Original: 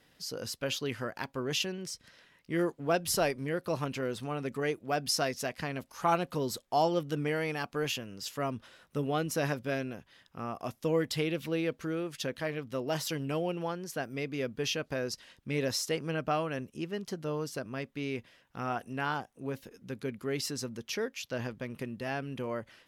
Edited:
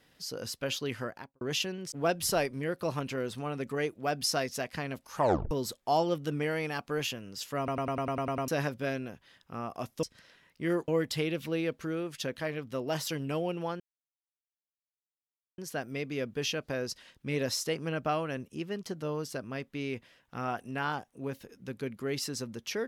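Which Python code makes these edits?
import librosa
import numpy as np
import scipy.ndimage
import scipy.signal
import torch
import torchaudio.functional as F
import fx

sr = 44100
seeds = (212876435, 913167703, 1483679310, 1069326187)

y = fx.studio_fade_out(x, sr, start_s=1.02, length_s=0.39)
y = fx.edit(y, sr, fx.move(start_s=1.92, length_s=0.85, to_s=10.88),
    fx.tape_stop(start_s=6.02, length_s=0.34),
    fx.stutter_over(start_s=8.43, slice_s=0.1, count=9),
    fx.insert_silence(at_s=13.8, length_s=1.78), tone=tone)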